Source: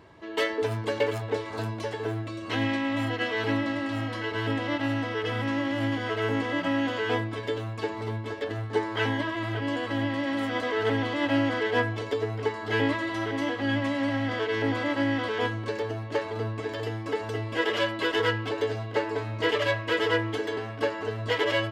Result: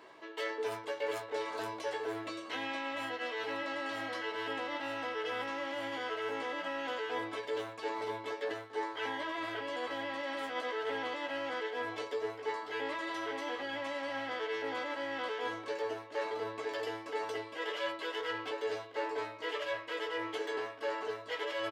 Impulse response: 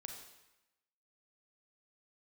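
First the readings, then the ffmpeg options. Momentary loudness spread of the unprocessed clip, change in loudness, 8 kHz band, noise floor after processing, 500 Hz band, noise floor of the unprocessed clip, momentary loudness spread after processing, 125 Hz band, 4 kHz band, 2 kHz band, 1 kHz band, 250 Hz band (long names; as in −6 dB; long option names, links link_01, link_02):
7 LU, −9.0 dB, −6.0 dB, −48 dBFS, −8.0 dB, −36 dBFS, 2 LU, −27.0 dB, −8.0 dB, −8.5 dB, −5.5 dB, −16.0 dB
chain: -filter_complex "[0:a]highpass=440,areverse,acompressor=threshold=-35dB:ratio=10,areverse,asplit=2[link_01][link_02];[link_02]adelay=16,volume=-6dB[link_03];[link_01][link_03]amix=inputs=2:normalize=0"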